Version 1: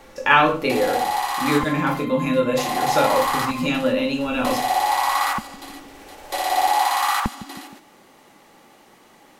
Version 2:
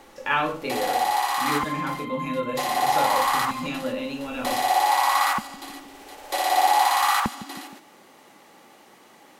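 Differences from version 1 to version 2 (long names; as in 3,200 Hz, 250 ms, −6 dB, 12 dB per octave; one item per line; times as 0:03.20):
speech −8.5 dB
first sound: add high-pass filter 170 Hz 6 dB per octave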